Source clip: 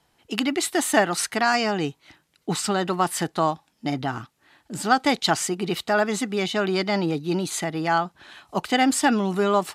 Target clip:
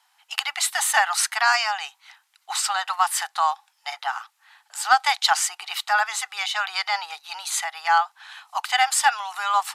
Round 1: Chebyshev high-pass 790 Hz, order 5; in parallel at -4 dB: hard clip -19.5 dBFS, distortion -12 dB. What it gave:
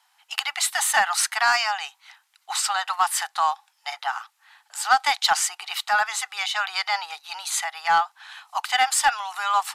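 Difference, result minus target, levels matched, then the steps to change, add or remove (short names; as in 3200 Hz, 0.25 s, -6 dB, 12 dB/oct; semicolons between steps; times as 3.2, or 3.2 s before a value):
hard clip: distortion +11 dB
change: hard clip -13 dBFS, distortion -23 dB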